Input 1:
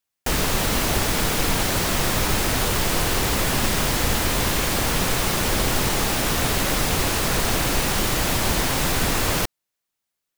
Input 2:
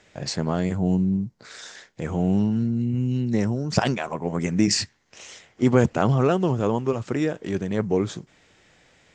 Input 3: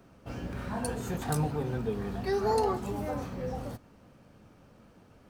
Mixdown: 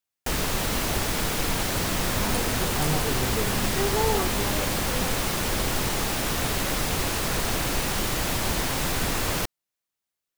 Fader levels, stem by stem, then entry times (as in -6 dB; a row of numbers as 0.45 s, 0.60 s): -4.5 dB, mute, +1.5 dB; 0.00 s, mute, 1.50 s